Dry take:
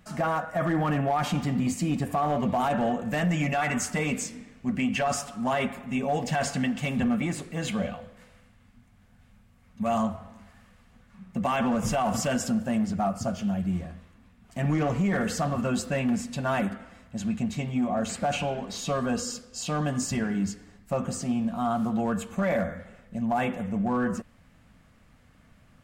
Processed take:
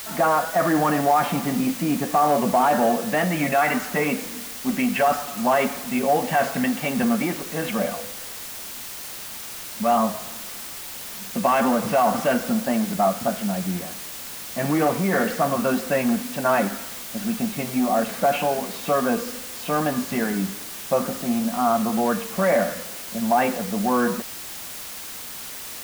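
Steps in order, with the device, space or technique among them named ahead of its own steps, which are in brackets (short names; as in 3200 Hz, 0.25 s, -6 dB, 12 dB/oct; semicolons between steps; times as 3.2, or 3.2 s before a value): wax cylinder (BPF 270–2200 Hz; wow and flutter; white noise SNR 12 dB); gain +8 dB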